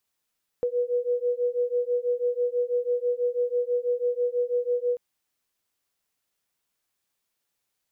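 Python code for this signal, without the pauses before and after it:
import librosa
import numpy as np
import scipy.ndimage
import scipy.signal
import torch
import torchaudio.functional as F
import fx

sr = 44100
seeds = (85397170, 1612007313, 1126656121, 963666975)

y = fx.two_tone_beats(sr, length_s=4.34, hz=485.0, beat_hz=6.1, level_db=-26.0)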